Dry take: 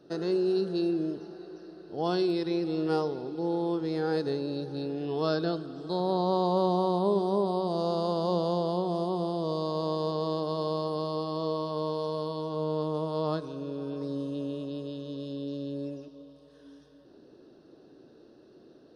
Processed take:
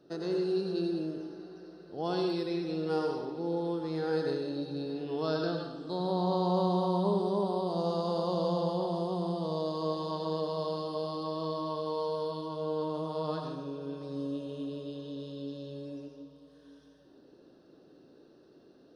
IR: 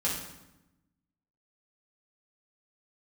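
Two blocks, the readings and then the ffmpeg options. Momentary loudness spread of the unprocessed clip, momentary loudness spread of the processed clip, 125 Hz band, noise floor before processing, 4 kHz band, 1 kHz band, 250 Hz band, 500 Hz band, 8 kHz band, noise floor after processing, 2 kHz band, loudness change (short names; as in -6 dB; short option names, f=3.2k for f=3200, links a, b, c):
10 LU, 12 LU, -2.0 dB, -56 dBFS, -2.5 dB, -2.5 dB, -3.0 dB, -3.0 dB, n/a, -59 dBFS, -2.0 dB, -3.0 dB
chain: -filter_complex "[0:a]asplit=2[a][b];[b]lowshelf=f=350:g=-10.5[c];[1:a]atrim=start_sample=2205,adelay=89[d];[c][d]afir=irnorm=-1:irlink=0,volume=-8dB[e];[a][e]amix=inputs=2:normalize=0,volume=-4.5dB"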